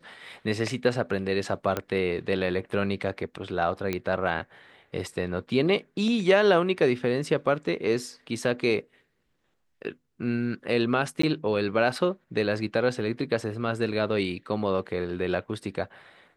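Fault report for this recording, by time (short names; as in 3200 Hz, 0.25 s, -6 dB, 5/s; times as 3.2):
1.77 pop -13 dBFS
3.93 pop -14 dBFS
11.22–11.23 gap 14 ms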